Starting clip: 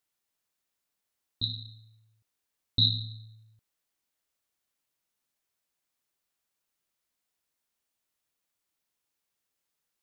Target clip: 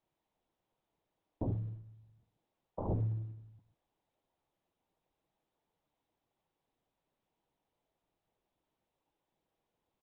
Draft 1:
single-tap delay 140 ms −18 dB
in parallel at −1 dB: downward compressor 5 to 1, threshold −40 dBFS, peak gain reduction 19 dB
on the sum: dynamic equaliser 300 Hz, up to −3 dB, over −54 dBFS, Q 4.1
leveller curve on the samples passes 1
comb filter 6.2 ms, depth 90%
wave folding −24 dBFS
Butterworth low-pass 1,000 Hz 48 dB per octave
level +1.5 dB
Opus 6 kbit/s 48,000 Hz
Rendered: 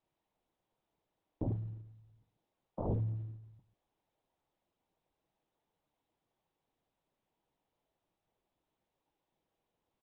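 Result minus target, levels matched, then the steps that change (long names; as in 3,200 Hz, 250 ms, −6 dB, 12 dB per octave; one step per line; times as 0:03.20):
downward compressor: peak gain reduction +5.5 dB
change: downward compressor 5 to 1, threshold −33 dBFS, peak gain reduction 13.5 dB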